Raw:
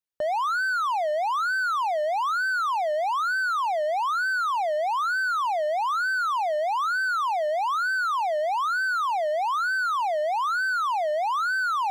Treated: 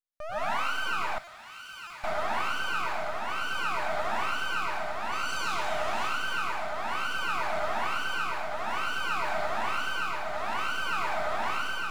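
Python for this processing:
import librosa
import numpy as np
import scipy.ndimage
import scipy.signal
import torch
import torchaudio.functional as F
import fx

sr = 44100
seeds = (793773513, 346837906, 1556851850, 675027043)

y = fx.self_delay(x, sr, depth_ms=0.096, at=(5.12, 5.93))
y = fx.low_shelf(y, sr, hz=260.0, db=-11.5)
y = fx.echo_split(y, sr, split_hz=830.0, low_ms=91, high_ms=344, feedback_pct=52, wet_db=-9)
y = np.maximum(y, 0.0)
y = fx.tremolo_shape(y, sr, shape='triangle', hz=0.57, depth_pct=70)
y = fx.rev_plate(y, sr, seeds[0], rt60_s=0.76, hf_ratio=0.95, predelay_ms=105, drr_db=-8.5)
y = fx.rider(y, sr, range_db=3, speed_s=0.5)
y = fx.tone_stack(y, sr, knobs='5-5-5', at=(1.18, 2.04))
y = fx.buffer_glitch(y, sr, at_s=(1.24, 1.87), block=128, repeats=10)
y = y * 10.0 ** (-6.5 / 20.0)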